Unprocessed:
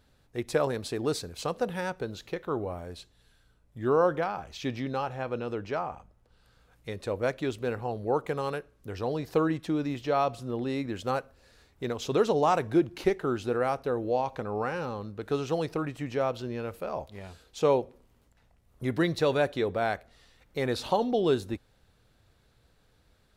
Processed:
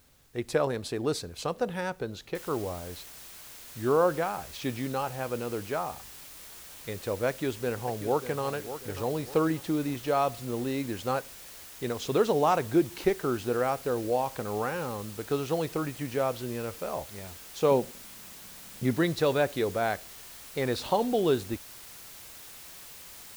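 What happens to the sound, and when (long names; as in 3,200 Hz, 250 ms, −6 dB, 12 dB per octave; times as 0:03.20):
0:02.35: noise floor change −65 dB −47 dB
0:07.28–0:08.43: delay throw 590 ms, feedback 40%, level −11.5 dB
0:17.71–0:18.94: parametric band 190 Hz +10 dB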